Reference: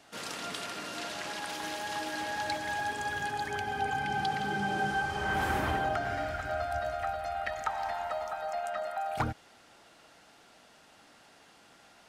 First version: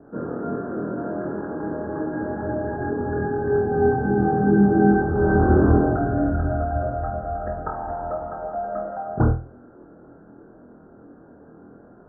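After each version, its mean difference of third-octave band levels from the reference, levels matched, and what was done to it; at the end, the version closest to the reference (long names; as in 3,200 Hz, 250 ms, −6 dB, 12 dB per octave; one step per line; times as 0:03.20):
14.0 dB: Butterworth low-pass 1,600 Hz 96 dB per octave
low shelf with overshoot 580 Hz +12.5 dB, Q 1.5
flutter between parallel walls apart 4.2 metres, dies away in 0.35 s
level +3 dB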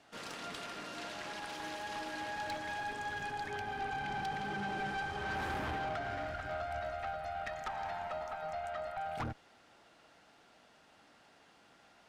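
2.5 dB: high-shelf EQ 6,700 Hz −10 dB
tube saturation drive 31 dB, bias 0.5
level −2 dB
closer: second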